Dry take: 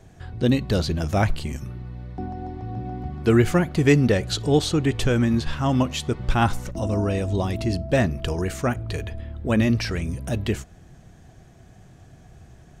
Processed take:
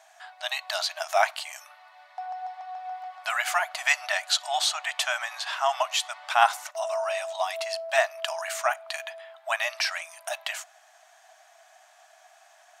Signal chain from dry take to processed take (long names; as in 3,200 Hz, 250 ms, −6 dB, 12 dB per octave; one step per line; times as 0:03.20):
linear-phase brick-wall high-pass 600 Hz
level +3.5 dB